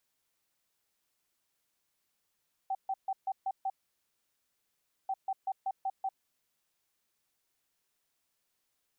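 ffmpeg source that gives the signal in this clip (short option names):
-f lavfi -i "aevalsrc='0.0335*sin(2*PI*772*t)*clip(min(mod(mod(t,2.39),0.19),0.05-mod(mod(t,2.39),0.19))/0.005,0,1)*lt(mod(t,2.39),1.14)':d=4.78:s=44100"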